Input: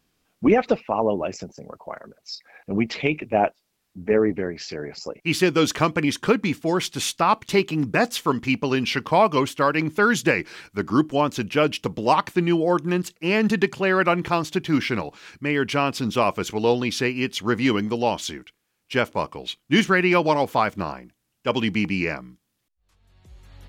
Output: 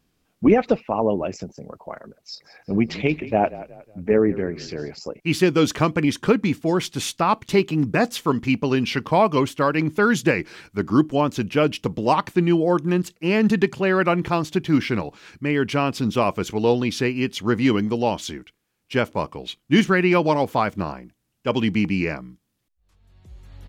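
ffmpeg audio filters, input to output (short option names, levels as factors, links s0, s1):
-filter_complex "[0:a]lowshelf=f=470:g=6,asplit=3[s0][s1][s2];[s0]afade=t=out:st=2.33:d=0.02[s3];[s1]asplit=4[s4][s5][s6][s7];[s5]adelay=181,afreqshift=-33,volume=0.15[s8];[s6]adelay=362,afreqshift=-66,volume=0.0569[s9];[s7]adelay=543,afreqshift=-99,volume=0.0216[s10];[s4][s8][s9][s10]amix=inputs=4:normalize=0,afade=t=in:st=2.33:d=0.02,afade=t=out:st=4.91:d=0.02[s11];[s2]afade=t=in:st=4.91:d=0.02[s12];[s3][s11][s12]amix=inputs=3:normalize=0,volume=0.794"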